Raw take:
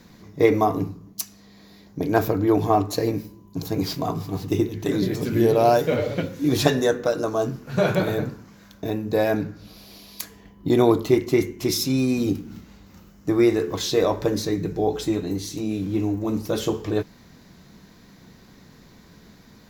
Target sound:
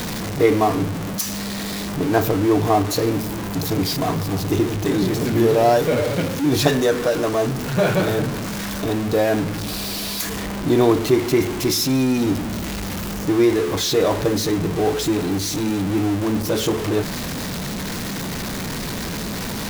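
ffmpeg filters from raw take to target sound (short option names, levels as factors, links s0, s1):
-af "aeval=exprs='val(0)+0.5*0.0841*sgn(val(0))':c=same"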